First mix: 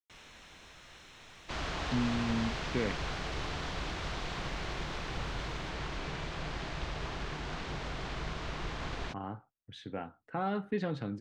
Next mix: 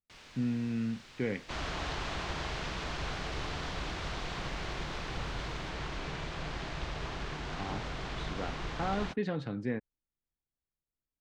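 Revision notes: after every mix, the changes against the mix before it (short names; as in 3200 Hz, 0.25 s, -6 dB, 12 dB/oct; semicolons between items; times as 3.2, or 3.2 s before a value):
speech: entry -1.55 s; first sound: remove Butterworth band-stop 4700 Hz, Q 7.5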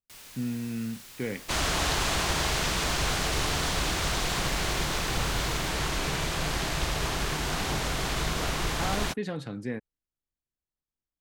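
second sound +8.0 dB; master: remove air absorption 150 m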